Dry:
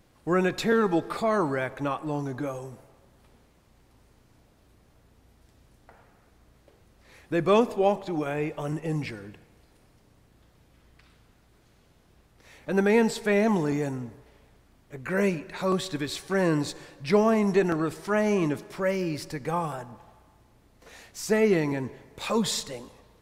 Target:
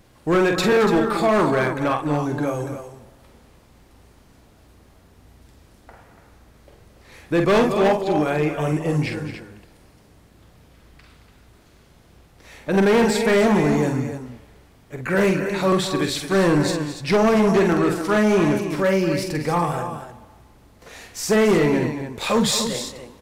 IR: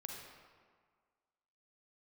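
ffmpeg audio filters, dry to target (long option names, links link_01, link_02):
-af "aecho=1:1:46.65|221.6|288.6:0.501|0.251|0.316,volume=20dB,asoftclip=hard,volume=-20dB,volume=7dB"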